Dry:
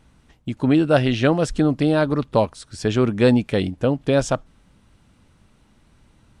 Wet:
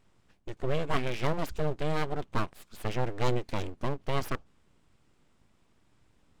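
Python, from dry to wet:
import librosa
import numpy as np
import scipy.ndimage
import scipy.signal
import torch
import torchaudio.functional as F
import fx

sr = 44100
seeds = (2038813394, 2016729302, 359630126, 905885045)

y = fx.formant_shift(x, sr, semitones=-2)
y = np.abs(y)
y = y * 10.0 ** (-9.0 / 20.0)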